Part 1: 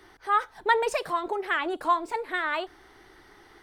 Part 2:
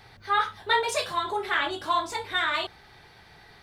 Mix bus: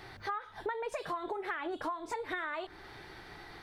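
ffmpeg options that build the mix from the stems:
ffmpeg -i stem1.wav -i stem2.wav -filter_complex "[0:a]acompressor=threshold=-31dB:ratio=2,lowpass=frequency=2500:width=0.5412,lowpass=frequency=2500:width=1.3066,volume=1dB,asplit=2[link_01][link_02];[1:a]acompressor=threshold=-40dB:ratio=2,volume=0dB[link_03];[link_02]apad=whole_len=160044[link_04];[link_03][link_04]sidechaincompress=threshold=-37dB:ratio=8:attack=29:release=200[link_05];[link_01][link_05]amix=inputs=2:normalize=0,acompressor=threshold=-33dB:ratio=10" out.wav

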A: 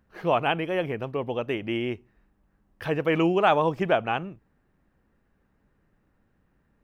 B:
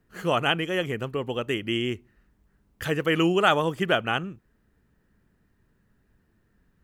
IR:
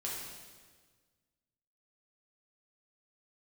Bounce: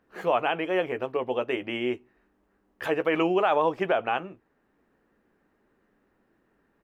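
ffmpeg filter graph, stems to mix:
-filter_complex "[0:a]lowpass=frequency=3900:poles=1,volume=2.5dB,asplit=2[link_01][link_02];[1:a]equalizer=frequency=300:width=0.66:gain=15,volume=-1,adelay=14,volume=-6.5dB[link_03];[link_02]apad=whole_len=302142[link_04];[link_03][link_04]sidechaincompress=threshold=-30dB:ratio=5:attack=16:release=644[link_05];[link_01][link_05]amix=inputs=2:normalize=0,bass=frequency=250:gain=-15,treble=frequency=4000:gain=-2,alimiter=limit=-13dB:level=0:latency=1:release=47"

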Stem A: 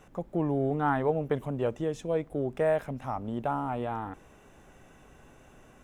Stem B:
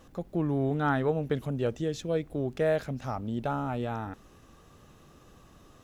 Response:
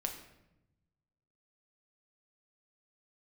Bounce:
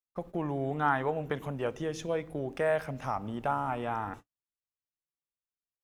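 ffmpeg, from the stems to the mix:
-filter_complex "[0:a]highpass=930,volume=0dB,asplit=2[link_01][link_02];[link_02]volume=-20dB[link_03];[1:a]equalizer=frequency=1000:width_type=o:width=0.27:gain=4,acompressor=threshold=-36dB:ratio=2,volume=-1,volume=-5.5dB,asplit=2[link_04][link_05];[link_05]volume=-4dB[link_06];[2:a]atrim=start_sample=2205[link_07];[link_03][link_06]amix=inputs=2:normalize=0[link_08];[link_08][link_07]afir=irnorm=-1:irlink=0[link_09];[link_01][link_04][link_09]amix=inputs=3:normalize=0,agate=range=-55dB:threshold=-43dB:ratio=16:detection=peak"

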